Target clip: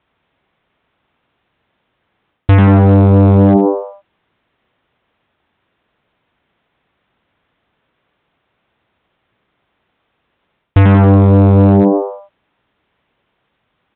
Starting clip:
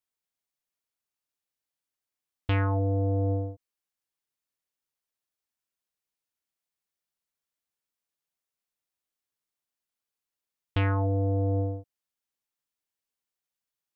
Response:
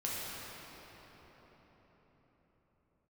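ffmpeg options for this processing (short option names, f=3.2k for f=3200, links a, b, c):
-filter_complex "[0:a]lowpass=f=1.5k:p=1,lowshelf=f=130:g=4,asplit=6[a][b][c][d][e][f];[b]adelay=90,afreqshift=100,volume=-4.5dB[g];[c]adelay=180,afreqshift=200,volume=-12.2dB[h];[d]adelay=270,afreqshift=300,volume=-20dB[i];[e]adelay=360,afreqshift=400,volume=-27.7dB[j];[f]adelay=450,afreqshift=500,volume=-35.5dB[k];[a][g][h][i][j][k]amix=inputs=6:normalize=0,areverse,acompressor=threshold=-32dB:ratio=5,areverse,highpass=40,aresample=8000,volume=28.5dB,asoftclip=hard,volume=-28.5dB,aresample=44100,alimiter=level_in=32.5dB:limit=-1dB:release=50:level=0:latency=1,volume=-1dB"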